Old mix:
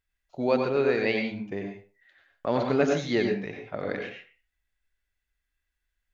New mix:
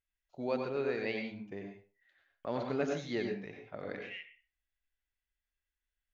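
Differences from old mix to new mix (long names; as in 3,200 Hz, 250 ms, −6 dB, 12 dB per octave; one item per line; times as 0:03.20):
first voice −10.0 dB
second voice +4.0 dB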